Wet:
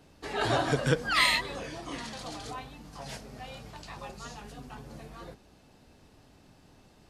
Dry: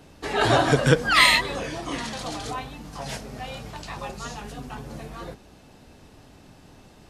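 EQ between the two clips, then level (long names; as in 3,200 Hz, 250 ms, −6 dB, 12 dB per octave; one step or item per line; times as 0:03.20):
parametric band 4,600 Hz +2.5 dB 0.24 octaves
−8.0 dB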